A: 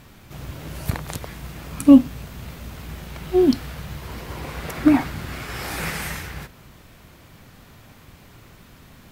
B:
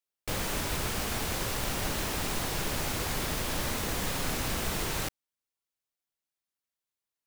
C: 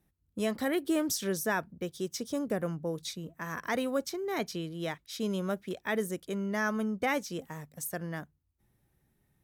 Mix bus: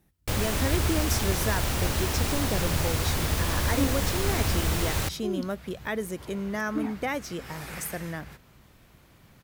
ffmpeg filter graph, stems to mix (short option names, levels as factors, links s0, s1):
-filter_complex "[0:a]adelay=1900,volume=0.355[s0];[1:a]equalizer=f=78:t=o:w=0.85:g=13,volume=1.33[s1];[2:a]acontrast=81,volume=0.944[s2];[s0][s2]amix=inputs=2:normalize=0,acompressor=threshold=0.0126:ratio=1.5,volume=1[s3];[s1][s3]amix=inputs=2:normalize=0"